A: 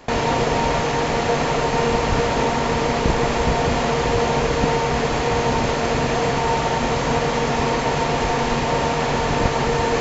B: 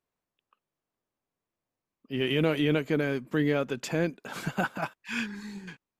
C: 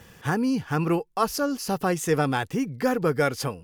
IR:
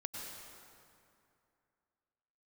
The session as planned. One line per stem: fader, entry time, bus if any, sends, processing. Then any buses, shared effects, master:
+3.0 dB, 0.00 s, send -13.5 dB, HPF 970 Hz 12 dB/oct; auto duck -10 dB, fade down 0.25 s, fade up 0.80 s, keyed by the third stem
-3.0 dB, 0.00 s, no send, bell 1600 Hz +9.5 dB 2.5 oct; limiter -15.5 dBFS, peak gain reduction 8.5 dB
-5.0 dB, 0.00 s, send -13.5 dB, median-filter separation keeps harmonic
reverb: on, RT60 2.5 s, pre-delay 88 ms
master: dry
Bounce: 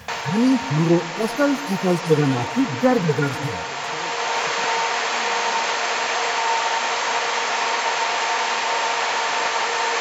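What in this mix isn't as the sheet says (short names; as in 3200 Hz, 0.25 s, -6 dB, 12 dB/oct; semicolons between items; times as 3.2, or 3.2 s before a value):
stem B -3.0 dB -> -10.0 dB; stem C -5.0 dB -> +6.0 dB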